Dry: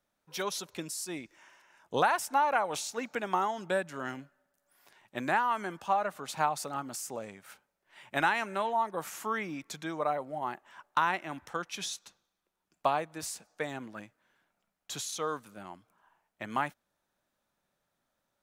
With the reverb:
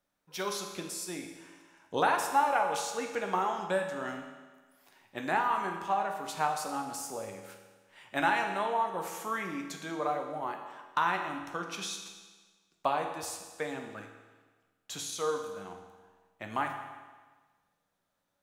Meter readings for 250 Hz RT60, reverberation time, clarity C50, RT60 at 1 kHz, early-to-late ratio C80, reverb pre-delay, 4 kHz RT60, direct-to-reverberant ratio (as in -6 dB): 1.4 s, 1.4 s, 6.0 dB, 1.4 s, 7.5 dB, 11 ms, 1.3 s, 3.0 dB